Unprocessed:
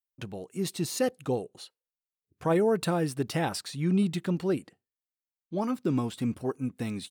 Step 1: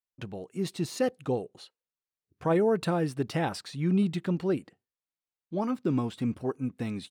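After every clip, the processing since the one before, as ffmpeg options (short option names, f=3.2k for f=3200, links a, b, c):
-af "highshelf=f=6.4k:g=-11"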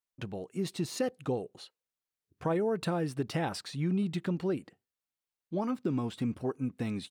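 -af "acompressor=threshold=-28dB:ratio=3"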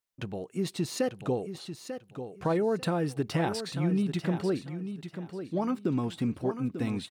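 -af "aecho=1:1:893|1786|2679:0.335|0.077|0.0177,volume=2.5dB"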